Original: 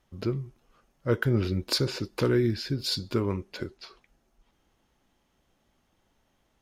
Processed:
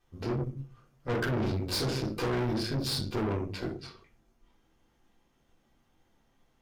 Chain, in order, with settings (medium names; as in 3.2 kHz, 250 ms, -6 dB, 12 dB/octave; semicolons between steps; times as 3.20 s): simulated room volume 230 m³, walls furnished, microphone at 3.7 m; valve stage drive 24 dB, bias 0.8; trim -3 dB